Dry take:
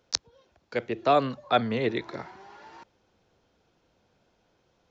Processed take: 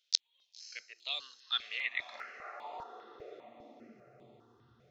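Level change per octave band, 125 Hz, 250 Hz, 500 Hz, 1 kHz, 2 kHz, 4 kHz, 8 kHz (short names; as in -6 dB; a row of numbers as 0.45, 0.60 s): under -25 dB, -27.0 dB, -23.0 dB, -17.5 dB, -3.0 dB, +0.5 dB, n/a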